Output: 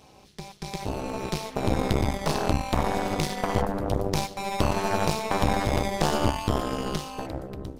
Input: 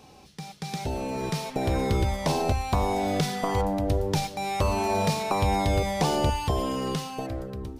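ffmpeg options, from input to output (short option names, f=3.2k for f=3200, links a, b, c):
-af "aeval=exprs='0.237*(cos(1*acos(clip(val(0)/0.237,-1,1)))-cos(1*PI/2))+0.0596*(cos(4*acos(clip(val(0)/0.237,-1,1)))-cos(4*PI/2))':c=same,tremolo=f=210:d=0.919,volume=2.5dB"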